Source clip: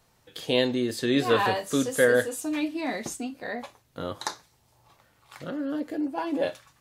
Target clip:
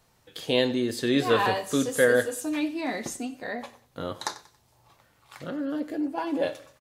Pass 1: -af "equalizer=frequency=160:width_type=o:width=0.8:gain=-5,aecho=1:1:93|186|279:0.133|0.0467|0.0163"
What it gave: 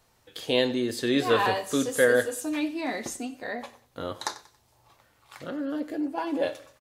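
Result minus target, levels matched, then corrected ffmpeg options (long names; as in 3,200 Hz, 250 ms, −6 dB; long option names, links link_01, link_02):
125 Hz band −2.5 dB
-af "aecho=1:1:93|186|279:0.133|0.0467|0.0163"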